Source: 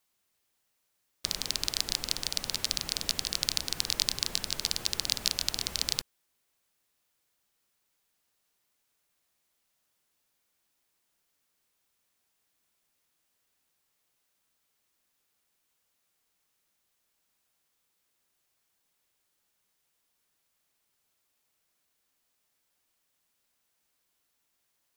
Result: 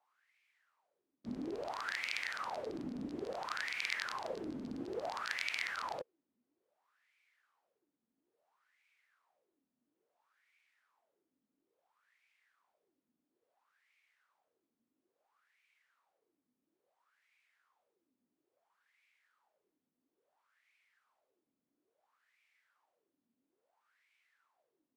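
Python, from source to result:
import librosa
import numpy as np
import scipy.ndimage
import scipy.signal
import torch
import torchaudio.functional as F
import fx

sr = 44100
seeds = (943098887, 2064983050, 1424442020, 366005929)

y = fx.transient(x, sr, attack_db=-11, sustain_db=1)
y = fx.wah_lfo(y, sr, hz=0.59, low_hz=240.0, high_hz=2300.0, q=7.6)
y = y * librosa.db_to_amplitude(17.0)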